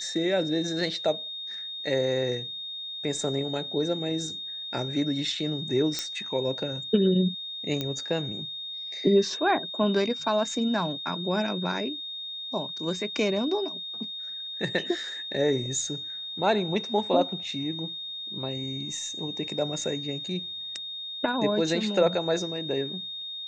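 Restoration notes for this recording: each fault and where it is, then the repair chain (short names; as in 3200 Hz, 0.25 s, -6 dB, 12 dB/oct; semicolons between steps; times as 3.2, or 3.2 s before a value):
tone 3700 Hz -34 dBFS
5.99 pop -13 dBFS
7.81 pop -15 dBFS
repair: de-click; notch 3700 Hz, Q 30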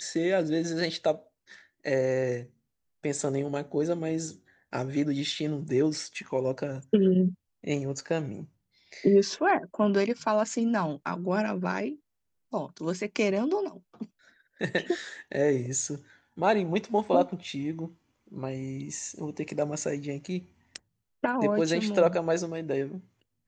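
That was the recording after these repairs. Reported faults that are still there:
none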